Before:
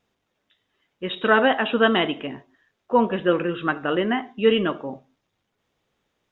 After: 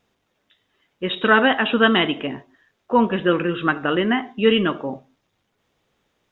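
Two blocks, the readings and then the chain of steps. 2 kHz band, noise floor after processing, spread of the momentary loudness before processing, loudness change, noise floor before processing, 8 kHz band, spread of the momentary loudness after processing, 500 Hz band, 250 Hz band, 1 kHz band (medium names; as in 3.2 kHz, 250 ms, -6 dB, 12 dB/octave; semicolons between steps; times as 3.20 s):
+4.0 dB, -72 dBFS, 14 LU, +2.0 dB, -77 dBFS, no reading, 14 LU, +0.5 dB, +3.5 dB, +2.0 dB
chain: dynamic bell 600 Hz, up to -6 dB, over -29 dBFS, Q 1.2; trim +4.5 dB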